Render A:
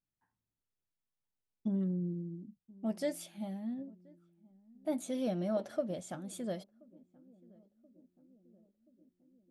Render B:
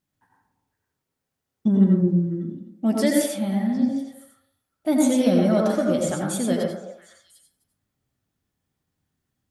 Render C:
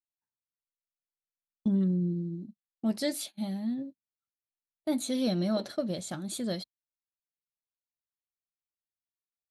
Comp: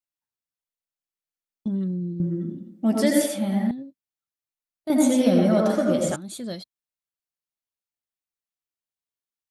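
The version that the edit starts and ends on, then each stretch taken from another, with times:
C
0:02.20–0:03.71: punch in from B
0:04.90–0:06.16: punch in from B
not used: A

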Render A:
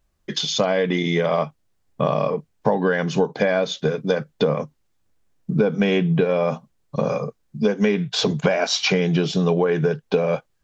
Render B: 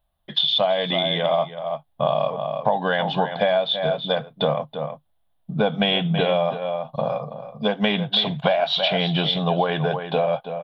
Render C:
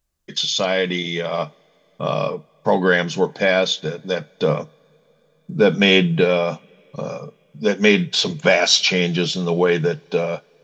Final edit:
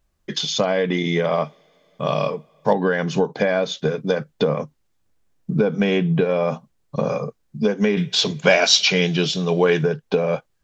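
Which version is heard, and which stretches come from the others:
A
0:01.45–0:02.73: punch in from C
0:07.97–0:09.83: punch in from C
not used: B

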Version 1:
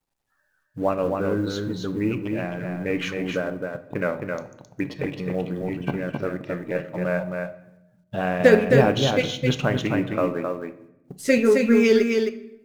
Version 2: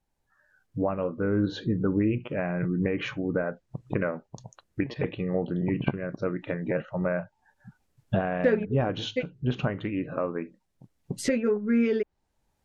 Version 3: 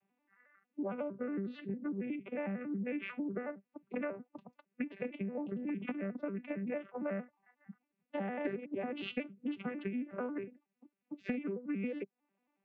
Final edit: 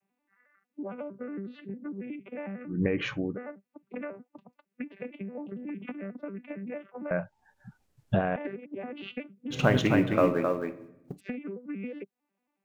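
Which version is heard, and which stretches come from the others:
3
0:02.74–0:03.31: punch in from 2, crossfade 0.16 s
0:07.11–0:08.36: punch in from 2
0:09.55–0:11.16: punch in from 1, crossfade 0.10 s

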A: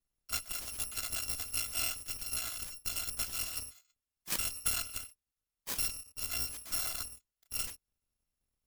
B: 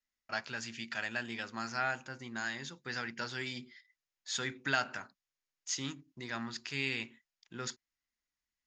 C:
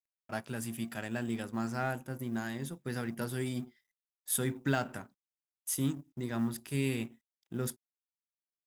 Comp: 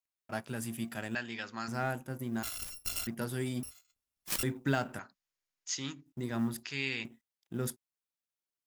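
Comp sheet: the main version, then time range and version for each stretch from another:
C
0:01.15–0:01.68: punch in from B
0:02.43–0:03.07: punch in from A
0:03.63–0:04.43: punch in from A
0:04.99–0:06.06: punch in from B
0:06.63–0:07.05: punch in from B

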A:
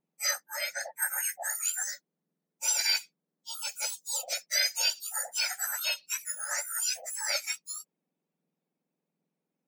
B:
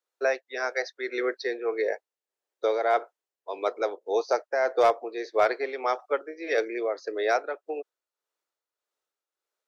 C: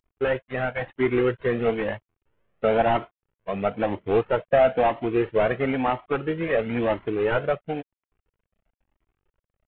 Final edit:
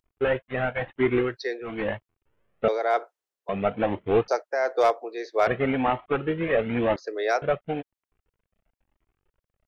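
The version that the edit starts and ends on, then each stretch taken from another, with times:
C
0:01.28–0:01.73: punch in from B, crossfade 0.24 s
0:02.68–0:03.49: punch in from B
0:04.28–0:05.47: punch in from B
0:06.96–0:07.42: punch in from B
not used: A

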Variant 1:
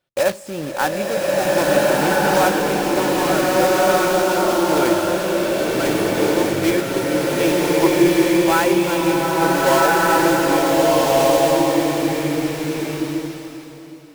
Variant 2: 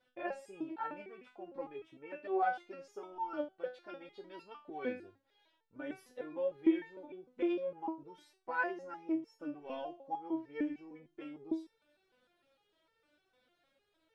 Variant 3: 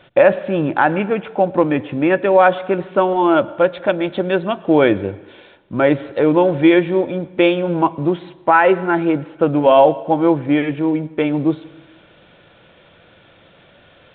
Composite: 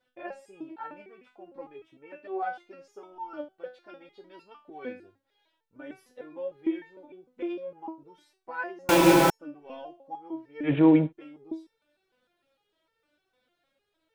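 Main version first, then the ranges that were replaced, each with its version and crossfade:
2
0:08.89–0:09.30: punch in from 1
0:10.68–0:11.08: punch in from 3, crossfade 0.10 s

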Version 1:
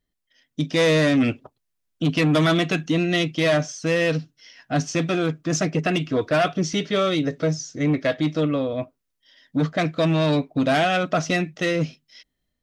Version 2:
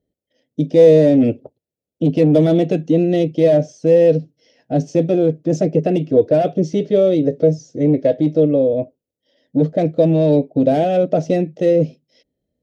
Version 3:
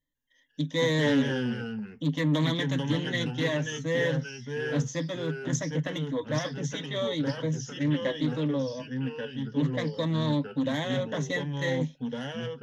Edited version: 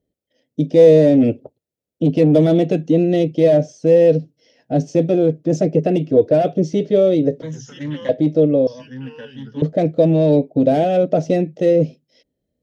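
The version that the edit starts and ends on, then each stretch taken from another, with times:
2
0:07.42–0:08.09: punch in from 3
0:08.67–0:09.62: punch in from 3
not used: 1

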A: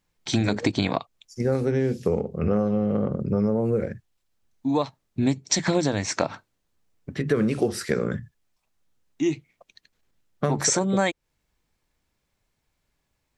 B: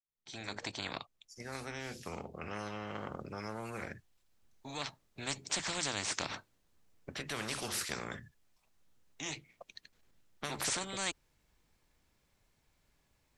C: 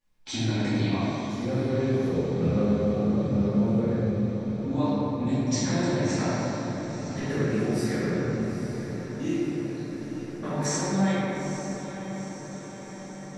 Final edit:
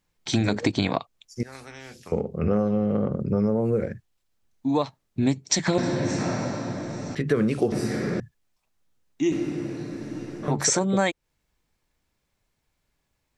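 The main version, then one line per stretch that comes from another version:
A
0:01.43–0:02.12: punch in from B
0:05.78–0:07.15: punch in from C
0:07.72–0:08.20: punch in from C
0:09.32–0:10.48: punch in from C

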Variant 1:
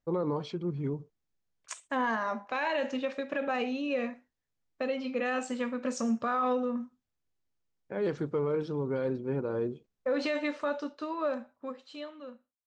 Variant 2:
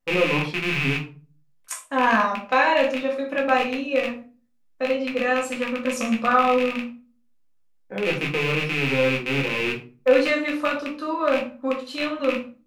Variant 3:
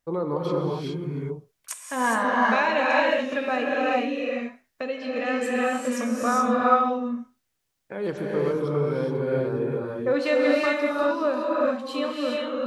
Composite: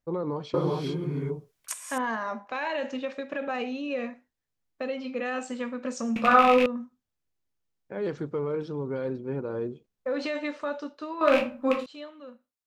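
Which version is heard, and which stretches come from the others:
1
0:00.54–0:01.98: punch in from 3
0:06.16–0:06.66: punch in from 2
0:11.21–0:11.86: punch in from 2

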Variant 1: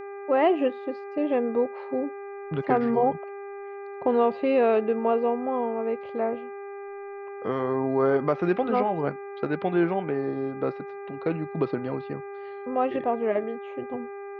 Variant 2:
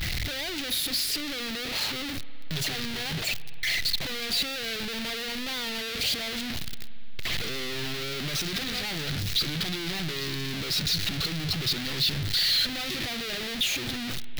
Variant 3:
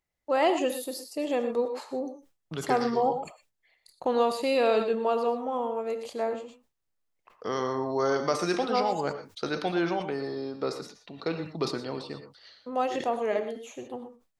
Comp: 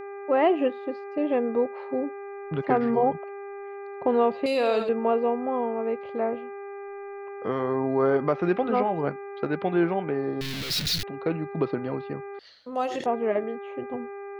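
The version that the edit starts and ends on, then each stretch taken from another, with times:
1
0:04.46–0:04.89: punch in from 3
0:10.41–0:11.03: punch in from 2
0:12.39–0:13.06: punch in from 3

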